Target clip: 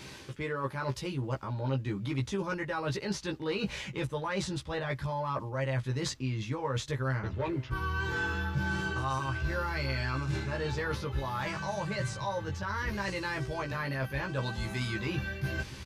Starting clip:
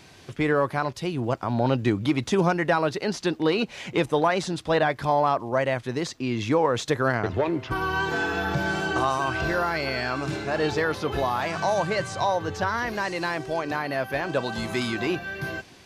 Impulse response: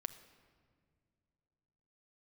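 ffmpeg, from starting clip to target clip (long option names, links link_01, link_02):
-filter_complex "[0:a]asubboost=boost=5:cutoff=130,areverse,acompressor=threshold=-34dB:ratio=10,areverse,asuperstop=centerf=710:order=4:qfactor=5.4,asplit=2[link_01][link_02];[link_02]adelay=15,volume=-3dB[link_03];[link_01][link_03]amix=inputs=2:normalize=0,volume=2.5dB"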